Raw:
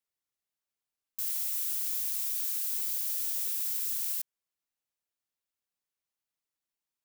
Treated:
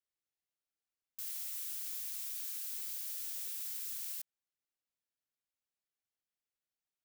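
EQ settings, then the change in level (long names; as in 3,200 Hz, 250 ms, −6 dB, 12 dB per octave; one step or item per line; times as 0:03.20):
parametric band 990 Hz −6.5 dB 0.31 octaves
high-shelf EQ 6,300 Hz −5 dB
−4.5 dB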